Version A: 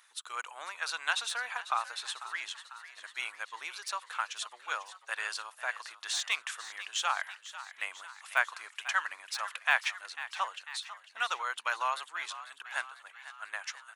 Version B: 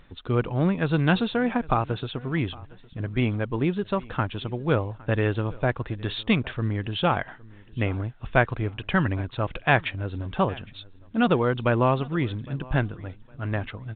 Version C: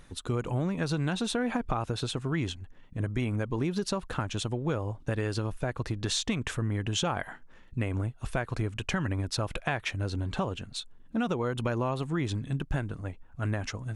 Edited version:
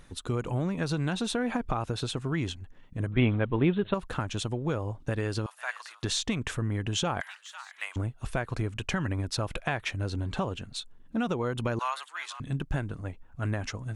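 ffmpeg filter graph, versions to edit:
-filter_complex "[0:a]asplit=3[a][b][c];[2:a]asplit=5[d][e][f][g][h];[d]atrim=end=3.122[i];[1:a]atrim=start=3.118:end=3.942[j];[e]atrim=start=3.938:end=5.462[k];[a]atrim=start=5.458:end=6.032[l];[f]atrim=start=6.028:end=7.212[m];[b]atrim=start=7.208:end=7.962[n];[g]atrim=start=7.958:end=11.792[o];[c]atrim=start=11.788:end=12.402[p];[h]atrim=start=12.398[q];[i][j]acrossfade=d=0.004:c1=hsin:c2=hsin[r];[r][k]acrossfade=d=0.004:c1=hsin:c2=hsin[s];[s][l]acrossfade=d=0.004:c1=hsin:c2=hsin[t];[t][m]acrossfade=d=0.004:c1=hsin:c2=hsin[u];[u][n]acrossfade=d=0.004:c1=hsin:c2=hsin[v];[v][o]acrossfade=d=0.004:c1=hsin:c2=hsin[w];[w][p]acrossfade=d=0.004:c1=hsin:c2=hsin[x];[x][q]acrossfade=d=0.004:c1=hsin:c2=hsin"

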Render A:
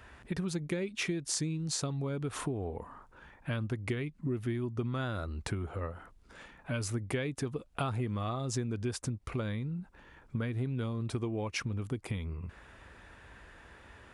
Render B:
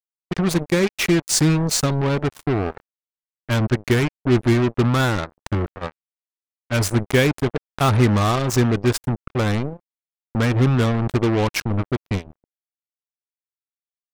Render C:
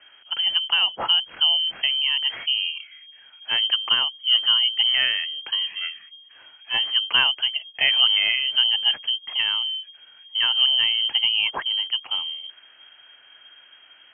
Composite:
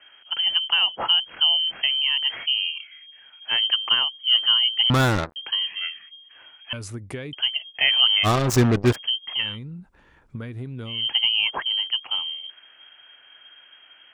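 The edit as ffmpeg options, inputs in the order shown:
-filter_complex "[1:a]asplit=2[a][b];[0:a]asplit=2[c][d];[2:a]asplit=5[e][f][g][h][i];[e]atrim=end=4.902[j];[a]atrim=start=4.898:end=5.362[k];[f]atrim=start=5.358:end=6.732[l];[c]atrim=start=6.728:end=7.332[m];[g]atrim=start=7.328:end=8.27[n];[b]atrim=start=8.23:end=8.96[o];[h]atrim=start=8.92:end=9.59[p];[d]atrim=start=9.35:end=11.09[q];[i]atrim=start=10.85[r];[j][k]acrossfade=d=0.004:c1=hsin:c2=hsin[s];[s][l]acrossfade=d=0.004:c1=hsin:c2=hsin[t];[t][m]acrossfade=d=0.004:c1=hsin:c2=hsin[u];[u][n]acrossfade=d=0.004:c1=hsin:c2=hsin[v];[v][o]acrossfade=d=0.04:c1=tri:c2=tri[w];[w][p]acrossfade=d=0.04:c1=tri:c2=tri[x];[x][q]acrossfade=d=0.24:c1=tri:c2=tri[y];[y][r]acrossfade=d=0.24:c1=tri:c2=tri"

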